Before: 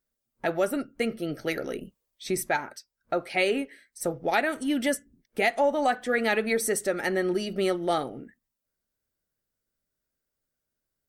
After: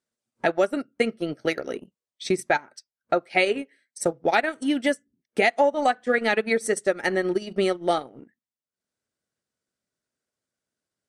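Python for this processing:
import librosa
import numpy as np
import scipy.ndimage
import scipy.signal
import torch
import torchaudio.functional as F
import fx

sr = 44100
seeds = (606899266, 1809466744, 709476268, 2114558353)

y = scipy.signal.sosfilt(scipy.signal.butter(2, 120.0, 'highpass', fs=sr, output='sos'), x)
y = fx.transient(y, sr, attack_db=5, sustain_db=-12)
y = scipy.signal.sosfilt(scipy.signal.butter(4, 9300.0, 'lowpass', fs=sr, output='sos'), y)
y = y * 10.0 ** (1.5 / 20.0)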